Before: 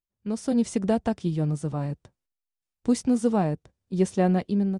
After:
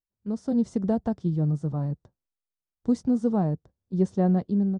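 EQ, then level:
parametric band 2,500 Hz −14 dB 0.95 octaves
dynamic equaliser 140 Hz, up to +5 dB, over −34 dBFS, Q 0.84
high-frequency loss of the air 110 metres
−3.0 dB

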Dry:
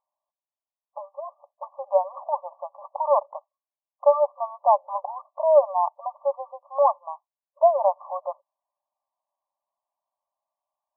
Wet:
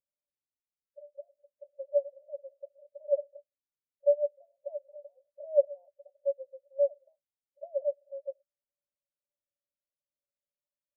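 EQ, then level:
Chebyshev low-pass filter 580 Hz, order 8
low-shelf EQ 440 Hz +10 dB
−8.5 dB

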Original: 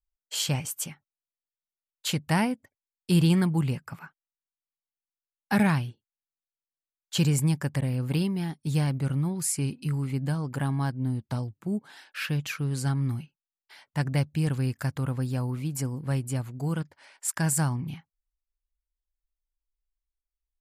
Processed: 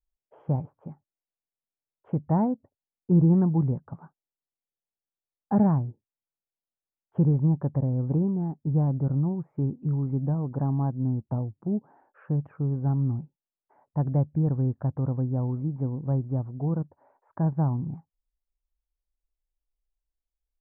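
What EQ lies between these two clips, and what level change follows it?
inverse Chebyshev low-pass filter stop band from 3,900 Hz, stop band 70 dB
+2.0 dB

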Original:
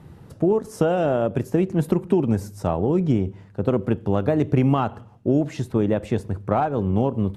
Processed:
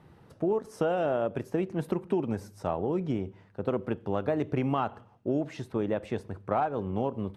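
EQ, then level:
low-shelf EQ 300 Hz −10 dB
high-shelf EQ 5,800 Hz −9.5 dB
notch filter 7,100 Hz, Q 15
−4.0 dB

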